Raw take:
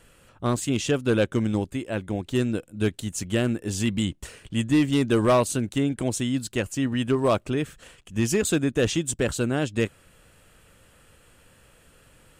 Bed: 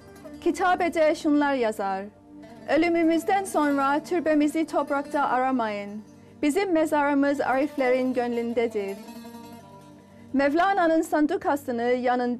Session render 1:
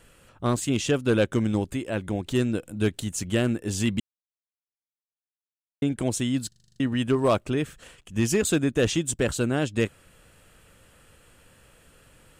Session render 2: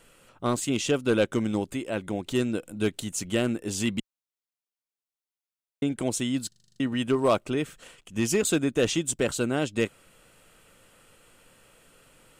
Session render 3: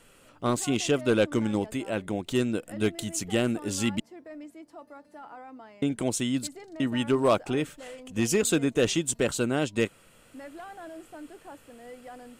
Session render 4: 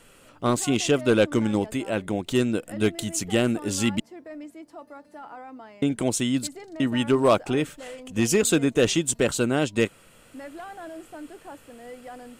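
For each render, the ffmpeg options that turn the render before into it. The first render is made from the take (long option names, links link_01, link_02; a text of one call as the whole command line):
ffmpeg -i in.wav -filter_complex "[0:a]asettb=1/sr,asplit=3[link_01][link_02][link_03];[link_01]atrim=end=1.334[link_04];[link_02]atrim=start=1.33:end=3.3,asetpts=PTS-STARTPTS,afade=type=in:duration=0.004:curve=qsin,afade=type=out:start_time=1.966:duration=0.004:curve=qsin,acompressor=mode=upward:threshold=-27dB:ratio=2.5:attack=3.2:release=140:knee=2.83:detection=peak[link_05];[link_03]atrim=start=3.296[link_06];[link_04][link_05]acrossfade=duration=0.004:curve1=hsin:curve2=qsin[link_07];[link_07][link_06]acrossfade=duration=0.004:curve1=qsin:curve2=hsin,asplit=11[link_08][link_09][link_10][link_11][link_12][link_13][link_14][link_15][link_16][link_17][link_18];[link_08]atrim=end=4,asetpts=PTS-STARTPTS,afade=type=out:start_time=3.996:duration=0.004:curve=hsin[link_19];[link_09]atrim=start=4:end=5.82,asetpts=PTS-STARTPTS,volume=0[link_20];[link_10]atrim=start=5.82:end=6.522,asetpts=PTS-STARTPTS,afade=type=in:duration=0.004:curve=hsin[link_21];[link_11]atrim=start=6.478:end=6.522[link_22];[link_12]atrim=start=6.478:end=6.522[link_23];[link_13]atrim=start=6.478:end=6.522[link_24];[link_14]atrim=start=6.478:end=6.522[link_25];[link_15]atrim=start=6.478:end=6.522[link_26];[link_16]atrim=start=6.478:end=6.522[link_27];[link_17]atrim=start=6.478:end=6.522[link_28];[link_18]atrim=start=6.798[link_29];[link_19][link_20][link_21]concat=n=3:v=0:a=1[link_30];[link_30][link_22]acrossfade=duration=0.004:curve1=hsin:curve2=hsin[link_31];[link_31][link_23]acrossfade=duration=0.004:curve1=hsin:curve2=hsin[link_32];[link_32][link_24]acrossfade=duration=0.004:curve1=hsin:curve2=hsin[link_33];[link_33][link_25]acrossfade=duration=0.004:curve1=hsin:curve2=hsin[link_34];[link_34][link_26]acrossfade=duration=0.004:curve1=hsin:curve2=hsin[link_35];[link_35][link_27]acrossfade=duration=0.004:curve1=hsin:curve2=hsin[link_36];[link_36][link_28]acrossfade=duration=0.004:curve1=hsin:curve2=hsin[link_37];[link_37][link_29]acrossfade=duration=0.004:curve1=hsin:curve2=hsin" out.wav
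ffmpeg -i in.wav -af "equalizer=frequency=61:width=0.67:gain=-12,bandreject=frequency=1700:width=13" out.wav
ffmpeg -i in.wav -i bed.wav -filter_complex "[1:a]volume=-21.5dB[link_01];[0:a][link_01]amix=inputs=2:normalize=0" out.wav
ffmpeg -i in.wav -af "volume=3.5dB" out.wav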